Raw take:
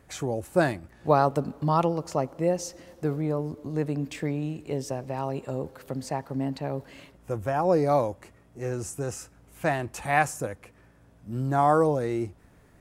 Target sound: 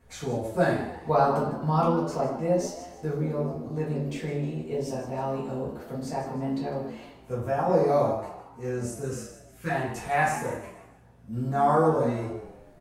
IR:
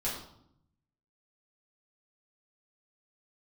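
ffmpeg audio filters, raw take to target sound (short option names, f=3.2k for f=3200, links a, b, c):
-filter_complex "[0:a]asettb=1/sr,asplit=3[a][b][c];[a]atrim=end=9.024[d];[b]atrim=start=9.02:end=9.7,asetpts=PTS-STARTPTS,afade=t=in:d=0.004:c=qsin,afade=t=out:st=0.676:d=0.004:c=qsin,asuperstop=centerf=720:order=4:qfactor=1.2[e];[c]atrim=start=9.696[f];[d][e]acrossfade=d=0.004:c1=hsin:c2=qsin[g];[g][f]acrossfade=d=0.004:c1=qsin:c2=hsin,asplit=5[h][i][j][k][l];[i]adelay=154,afreqshift=85,volume=-12dB[m];[j]adelay=308,afreqshift=170,volume=-20.2dB[n];[k]adelay=462,afreqshift=255,volume=-28.4dB[o];[l]adelay=616,afreqshift=340,volume=-36.5dB[p];[h][m][n][o][p]amix=inputs=5:normalize=0[q];[1:a]atrim=start_sample=2205,atrim=end_sample=6615[r];[q][r]afir=irnorm=-1:irlink=0,volume=-6dB"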